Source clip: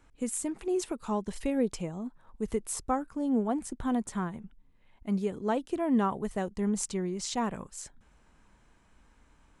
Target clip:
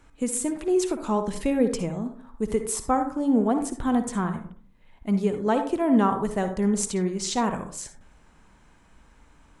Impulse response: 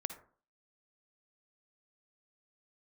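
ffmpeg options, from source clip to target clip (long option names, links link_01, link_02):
-filter_complex "[1:a]atrim=start_sample=2205,asetrate=42336,aresample=44100[link_01];[0:a][link_01]afir=irnorm=-1:irlink=0,volume=7dB"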